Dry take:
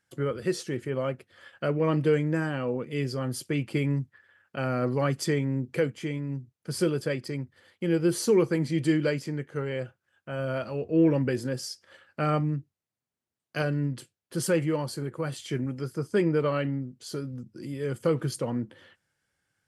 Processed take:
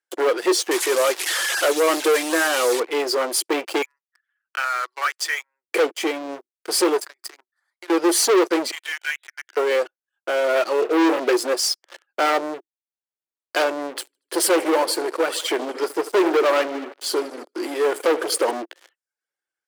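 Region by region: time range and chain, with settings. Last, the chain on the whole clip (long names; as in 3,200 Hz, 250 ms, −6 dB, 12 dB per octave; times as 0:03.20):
0:00.71–0:02.80: linear delta modulator 64 kbit/s, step −35.5 dBFS + spectral tilt +2 dB per octave
0:03.82–0:05.72: high-pass filter 1,300 Hz 24 dB per octave + spectral tilt −3.5 dB per octave
0:07.01–0:07.90: high-pass filter 440 Hz 24 dB per octave + downward compressor 20 to 1, threshold −39 dBFS + phaser with its sweep stopped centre 1,200 Hz, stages 4
0:08.71–0:09.57: downward compressor 2 to 1, threshold −32 dBFS + linear-phase brick-wall band-pass 1,400–4,000 Hz
0:10.79–0:11.20: dynamic equaliser 410 Hz, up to −3 dB, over −33 dBFS, Q 1 + flutter between parallel walls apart 4.7 metres, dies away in 0.35 s
0:13.86–0:18.51: parametric band 6,400 Hz −5.5 dB 0.41 octaves + repeating echo 77 ms, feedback 57%, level −10.5 dB
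whole clip: reverb reduction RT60 0.5 s; leveller curve on the samples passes 5; elliptic high-pass filter 340 Hz, stop band 70 dB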